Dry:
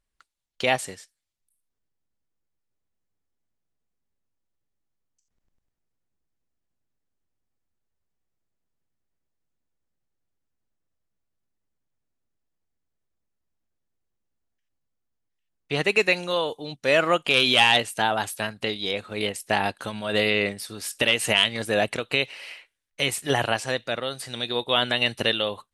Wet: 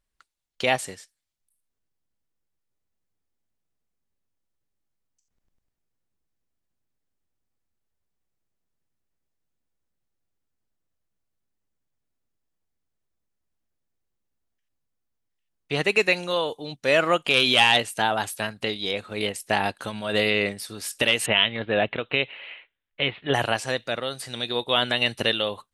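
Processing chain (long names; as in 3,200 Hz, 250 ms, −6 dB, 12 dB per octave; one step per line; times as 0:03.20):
0:21.26–0:23.34: Butterworth low-pass 3,700 Hz 72 dB per octave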